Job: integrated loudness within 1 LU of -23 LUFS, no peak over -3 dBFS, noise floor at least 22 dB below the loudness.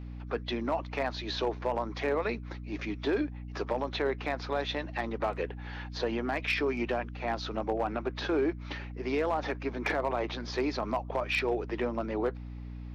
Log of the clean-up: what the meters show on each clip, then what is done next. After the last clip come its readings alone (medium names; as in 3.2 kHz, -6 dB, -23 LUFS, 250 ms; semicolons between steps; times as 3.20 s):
clipped samples 0.5%; clipping level -21.5 dBFS; hum 60 Hz; highest harmonic 300 Hz; hum level -38 dBFS; loudness -32.5 LUFS; peak level -21.5 dBFS; loudness target -23.0 LUFS
-> clip repair -21.5 dBFS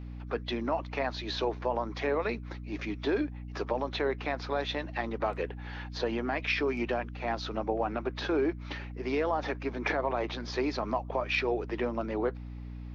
clipped samples 0.0%; hum 60 Hz; highest harmonic 300 Hz; hum level -38 dBFS
-> hum notches 60/120/180/240/300 Hz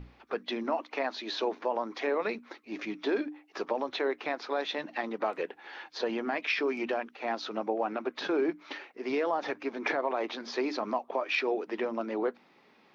hum not found; loudness -33.0 LUFS; peak level -17.0 dBFS; loudness target -23.0 LUFS
-> trim +10 dB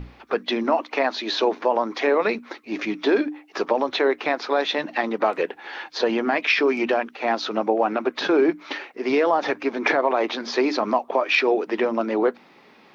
loudness -23.0 LUFS; peak level -7.0 dBFS; noise floor -52 dBFS